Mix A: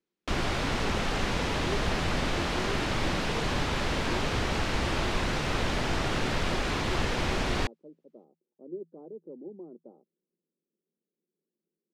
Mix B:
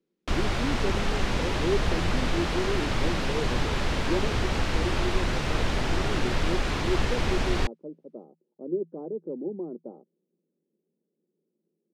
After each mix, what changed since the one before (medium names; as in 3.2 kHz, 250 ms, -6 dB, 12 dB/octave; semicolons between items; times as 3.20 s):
speech +9.5 dB; master: add bass shelf 82 Hz +6.5 dB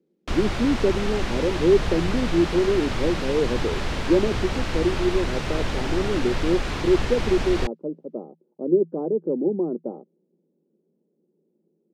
speech +10.0 dB